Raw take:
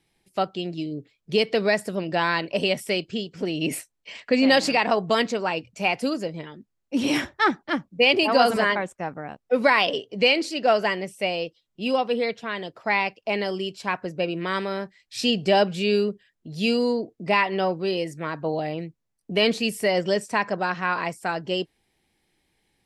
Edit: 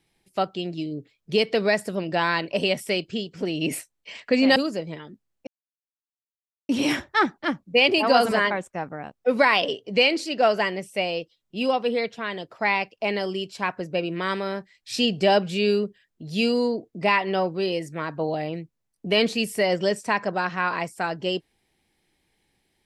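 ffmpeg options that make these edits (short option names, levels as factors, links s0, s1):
-filter_complex "[0:a]asplit=3[s0][s1][s2];[s0]atrim=end=4.562[s3];[s1]atrim=start=6.028:end=6.94,asetpts=PTS-STARTPTS,afade=t=out:st=0.908:d=0.004:c=hsin,apad=pad_dur=1.22[s4];[s2]atrim=start=6.94,asetpts=PTS-STARTPTS,afade=t=in:d=0.004:c=hsin[s5];[s4][s5]concat=n=2:v=0:a=1[s6];[s3][s6]acrossfade=d=0.004:c1=hsin:c2=hsin"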